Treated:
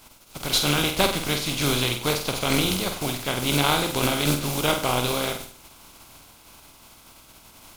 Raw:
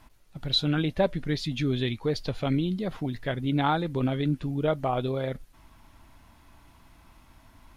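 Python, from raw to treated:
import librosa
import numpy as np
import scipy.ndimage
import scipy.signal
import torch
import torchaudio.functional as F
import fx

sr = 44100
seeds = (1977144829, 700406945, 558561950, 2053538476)

y = fx.spec_flatten(x, sr, power=0.39)
y = fx.peak_eq(y, sr, hz=1800.0, db=-13.0, octaves=0.2)
y = fx.room_flutter(y, sr, wall_m=8.3, rt60_s=0.46)
y = y * librosa.db_to_amplitude(3.0)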